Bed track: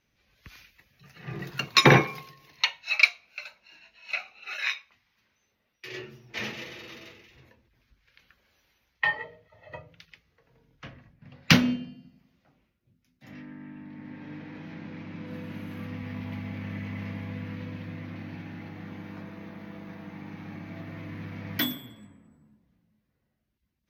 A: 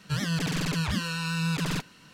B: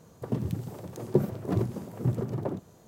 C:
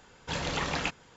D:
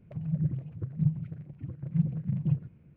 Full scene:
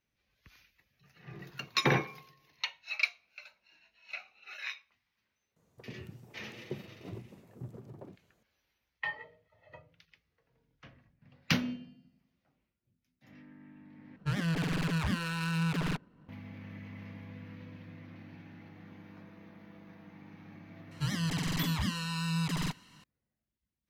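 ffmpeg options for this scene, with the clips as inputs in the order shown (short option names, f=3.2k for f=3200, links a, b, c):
-filter_complex "[1:a]asplit=2[a][b];[0:a]volume=-10.5dB[c];[a]adynamicsmooth=sensitivity=6:basefreq=660[d];[b]aecho=1:1:1:0.39[e];[c]asplit=2[f][g];[f]atrim=end=14.164[h];[d]atrim=end=2.13,asetpts=PTS-STARTPTS,volume=-2.5dB[i];[g]atrim=start=16.286[j];[2:a]atrim=end=2.87,asetpts=PTS-STARTPTS,volume=-17dB,afade=t=in:d=0.004:c=hsin,afade=t=out:st=2.866:d=0.004:c=hsin,adelay=5560[k];[e]atrim=end=2.13,asetpts=PTS-STARTPTS,volume=-5.5dB,afade=t=in:d=0.004:c=hsin,afade=t=out:st=2.126:d=0.004:c=hsin,adelay=20910[l];[h][i]acrossfade=d=0.004:c1=hsin:c2=hsin[m];[m][j]acrossfade=d=0.004:c1=hsin:c2=hsin[n];[n][k][l]amix=inputs=3:normalize=0"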